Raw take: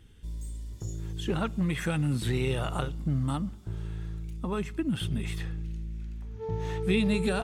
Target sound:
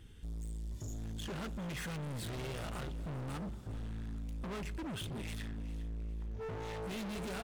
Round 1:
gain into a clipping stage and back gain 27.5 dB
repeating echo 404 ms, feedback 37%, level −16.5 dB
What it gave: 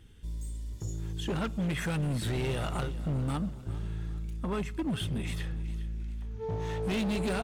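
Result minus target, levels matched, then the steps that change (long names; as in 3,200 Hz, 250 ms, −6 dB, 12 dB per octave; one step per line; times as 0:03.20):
gain into a clipping stage and back: distortion −7 dB
change: gain into a clipping stage and back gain 39.5 dB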